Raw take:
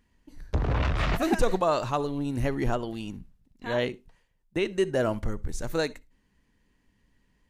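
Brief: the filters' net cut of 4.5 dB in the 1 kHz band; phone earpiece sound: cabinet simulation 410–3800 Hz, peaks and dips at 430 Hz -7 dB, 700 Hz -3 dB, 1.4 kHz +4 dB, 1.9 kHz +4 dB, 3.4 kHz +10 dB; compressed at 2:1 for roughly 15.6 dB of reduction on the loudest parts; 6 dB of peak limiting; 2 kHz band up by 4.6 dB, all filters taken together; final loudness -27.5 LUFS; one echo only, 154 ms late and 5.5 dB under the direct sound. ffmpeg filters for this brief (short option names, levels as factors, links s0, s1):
-af "equalizer=f=1000:t=o:g=-7.5,equalizer=f=2000:t=o:g=3.5,acompressor=threshold=0.00398:ratio=2,alimiter=level_in=2.51:limit=0.0631:level=0:latency=1,volume=0.398,highpass=410,equalizer=f=430:t=q:w=4:g=-7,equalizer=f=700:t=q:w=4:g=-3,equalizer=f=1400:t=q:w=4:g=4,equalizer=f=1900:t=q:w=4:g=4,equalizer=f=3400:t=q:w=4:g=10,lowpass=f=3800:w=0.5412,lowpass=f=3800:w=1.3066,aecho=1:1:154:0.531,volume=8.91"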